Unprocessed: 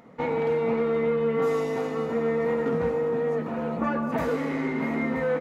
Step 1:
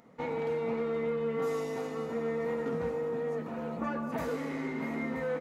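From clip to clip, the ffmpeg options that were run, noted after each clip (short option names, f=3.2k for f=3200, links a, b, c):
-af "bass=f=250:g=0,treble=f=4k:g=6,volume=-7.5dB"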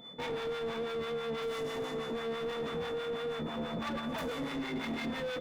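-filter_complex "[0:a]asoftclip=type=hard:threshold=-38.5dB,aeval=exprs='val(0)+0.00251*sin(2*PI*3500*n/s)':c=same,acrossover=split=670[a][b];[a]aeval=exprs='val(0)*(1-0.7/2+0.7/2*cos(2*PI*6.1*n/s))':c=same[c];[b]aeval=exprs='val(0)*(1-0.7/2-0.7/2*cos(2*PI*6.1*n/s))':c=same[d];[c][d]amix=inputs=2:normalize=0,volume=7dB"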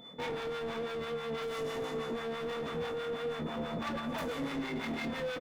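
-filter_complex "[0:a]asplit=2[a][b];[b]adelay=25,volume=-11.5dB[c];[a][c]amix=inputs=2:normalize=0"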